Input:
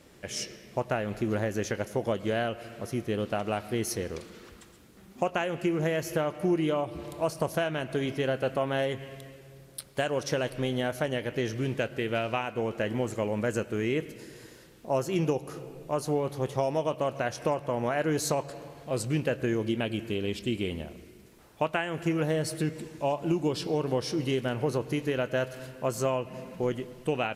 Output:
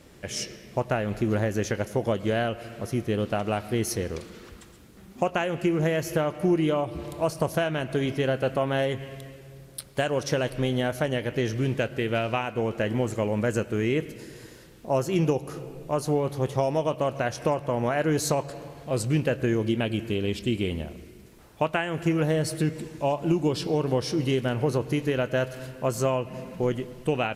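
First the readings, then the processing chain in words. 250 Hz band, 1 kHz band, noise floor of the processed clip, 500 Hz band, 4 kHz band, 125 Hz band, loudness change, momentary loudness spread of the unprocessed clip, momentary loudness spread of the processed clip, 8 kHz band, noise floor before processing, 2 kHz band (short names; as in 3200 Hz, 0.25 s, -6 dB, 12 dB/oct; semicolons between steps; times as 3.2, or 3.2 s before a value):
+3.5 dB, +2.5 dB, -50 dBFS, +3.0 dB, +2.5 dB, +5.5 dB, +3.5 dB, 8 LU, 10 LU, +2.5 dB, -54 dBFS, +2.5 dB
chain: low shelf 140 Hz +5.5 dB; gain +2.5 dB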